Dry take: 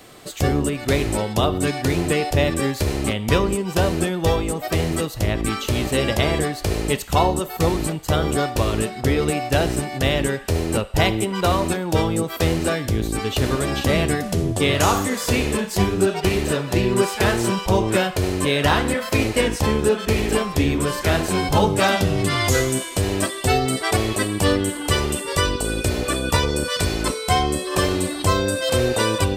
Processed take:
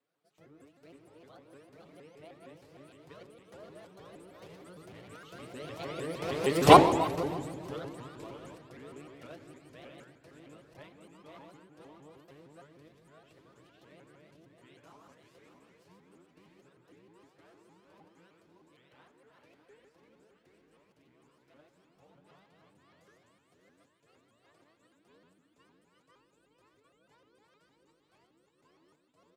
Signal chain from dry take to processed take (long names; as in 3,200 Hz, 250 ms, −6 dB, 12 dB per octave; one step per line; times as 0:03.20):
feedback delay that plays each chunk backwards 282 ms, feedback 52%, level −3 dB
source passing by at 0:06.70, 22 m/s, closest 1.1 metres
high-pass filter 350 Hz 6 dB per octave
high-shelf EQ 3,700 Hz −11.5 dB
notch filter 790 Hz, Q 14
comb filter 6.5 ms, depth 59%
rectangular room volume 2,500 cubic metres, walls mixed, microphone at 0.6 metres
pitch modulation by a square or saw wave saw up 6.5 Hz, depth 250 cents
level +5 dB